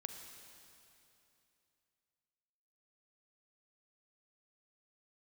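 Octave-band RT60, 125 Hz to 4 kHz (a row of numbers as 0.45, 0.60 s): 3.1, 3.0, 2.9, 2.8, 2.8, 2.7 s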